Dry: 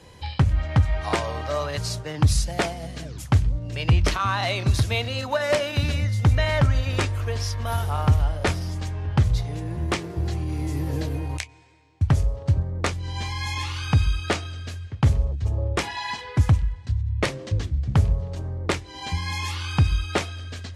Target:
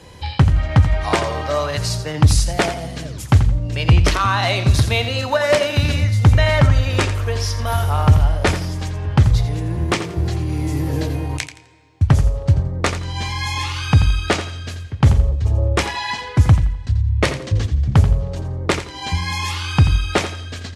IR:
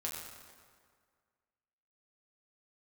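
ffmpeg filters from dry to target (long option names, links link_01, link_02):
-af "aecho=1:1:85|170|255:0.282|0.0761|0.0205,volume=6dB"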